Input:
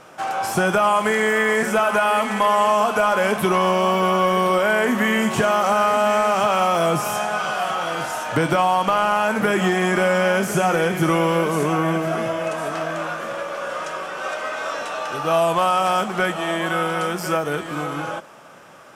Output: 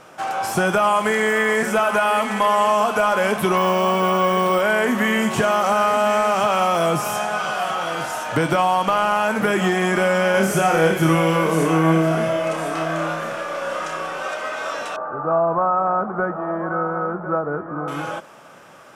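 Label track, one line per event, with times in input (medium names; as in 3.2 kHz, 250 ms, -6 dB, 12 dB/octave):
3.570000	4.610000	careless resampling rate divided by 2×, down none, up hold
10.310000	14.230000	flutter echo walls apart 5.3 m, dies away in 0.36 s
14.960000	17.880000	Chebyshev low-pass 1.4 kHz, order 4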